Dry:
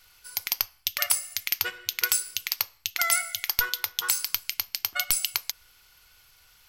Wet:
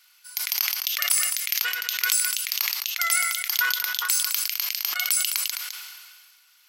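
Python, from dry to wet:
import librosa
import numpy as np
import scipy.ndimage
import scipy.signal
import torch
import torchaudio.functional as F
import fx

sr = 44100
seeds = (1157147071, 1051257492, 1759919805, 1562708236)

y = scipy.signal.sosfilt(scipy.signal.butter(2, 1200.0, 'highpass', fs=sr, output='sos'), x)
y = y + 10.0 ** (-13.5 / 20.0) * np.pad(y, (int(210 * sr / 1000.0), 0))[:len(y)]
y = fx.sustainer(y, sr, db_per_s=33.0)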